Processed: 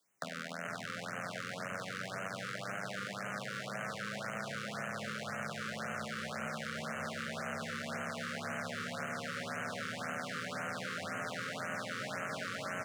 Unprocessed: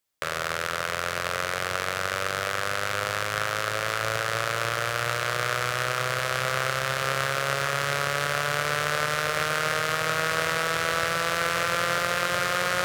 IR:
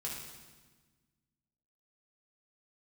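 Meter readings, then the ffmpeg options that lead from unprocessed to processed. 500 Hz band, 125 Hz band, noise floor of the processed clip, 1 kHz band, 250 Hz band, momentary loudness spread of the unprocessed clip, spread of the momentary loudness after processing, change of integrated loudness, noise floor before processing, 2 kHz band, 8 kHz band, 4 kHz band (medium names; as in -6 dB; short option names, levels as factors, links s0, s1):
-13.5 dB, -12.0 dB, -44 dBFS, -14.5 dB, -3.0 dB, 3 LU, 2 LU, -13.5 dB, -31 dBFS, -13.5 dB, -15.5 dB, -15.5 dB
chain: -filter_complex "[0:a]equalizer=f=90:w=0.36:g=3,asplit=2[s0][s1];[s1]asplit=6[s2][s3][s4][s5][s6][s7];[s2]adelay=433,afreqshift=-62,volume=0.596[s8];[s3]adelay=866,afreqshift=-124,volume=0.292[s9];[s4]adelay=1299,afreqshift=-186,volume=0.143[s10];[s5]adelay=1732,afreqshift=-248,volume=0.07[s11];[s6]adelay=2165,afreqshift=-310,volume=0.0343[s12];[s7]adelay=2598,afreqshift=-372,volume=0.0168[s13];[s8][s9][s10][s11][s12][s13]amix=inputs=6:normalize=0[s14];[s0][s14]amix=inputs=2:normalize=0,acontrast=70,bandreject=f=2400:w=29,acrossover=split=100|1900[s15][s16][s17];[s15]acompressor=threshold=0.00282:ratio=4[s18];[s16]acompressor=threshold=0.00891:ratio=4[s19];[s17]acompressor=threshold=0.00501:ratio=4[s20];[s18][s19][s20]amix=inputs=3:normalize=0,equalizer=f=14000:w=1.2:g=-13.5,afreqshift=92,afftfilt=real='re*(1-between(b*sr/1024,750*pow(4400/750,0.5+0.5*sin(2*PI*1.9*pts/sr))/1.41,750*pow(4400/750,0.5+0.5*sin(2*PI*1.9*pts/sr))*1.41))':imag='im*(1-between(b*sr/1024,750*pow(4400/750,0.5+0.5*sin(2*PI*1.9*pts/sr))/1.41,750*pow(4400/750,0.5+0.5*sin(2*PI*1.9*pts/sr))*1.41))':win_size=1024:overlap=0.75,volume=0.841"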